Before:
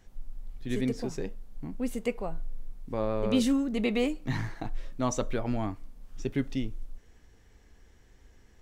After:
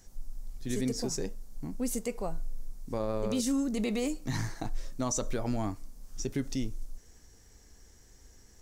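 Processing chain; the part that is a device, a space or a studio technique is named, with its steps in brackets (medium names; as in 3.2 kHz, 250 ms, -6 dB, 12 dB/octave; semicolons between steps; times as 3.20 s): over-bright horn tweeter (resonant high shelf 4.2 kHz +10 dB, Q 1.5; peak limiter -22 dBFS, peak gain reduction 11 dB)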